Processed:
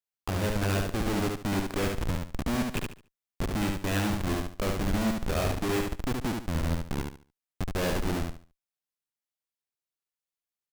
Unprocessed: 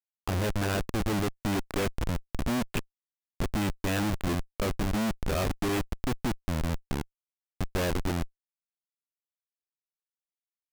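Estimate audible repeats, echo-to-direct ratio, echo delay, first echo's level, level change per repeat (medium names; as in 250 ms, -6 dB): 3, -3.0 dB, 72 ms, -3.5 dB, -11.5 dB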